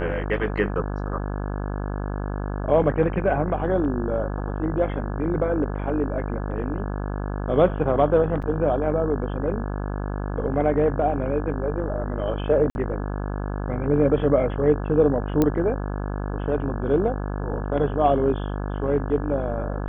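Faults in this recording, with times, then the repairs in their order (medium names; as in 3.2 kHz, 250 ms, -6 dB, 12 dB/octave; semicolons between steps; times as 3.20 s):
buzz 50 Hz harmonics 34 -28 dBFS
8.42–8.43 s: dropout 5.8 ms
12.70–12.75 s: dropout 51 ms
15.42 s: pop -8 dBFS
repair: de-click; de-hum 50 Hz, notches 34; interpolate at 8.42 s, 5.8 ms; interpolate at 12.70 s, 51 ms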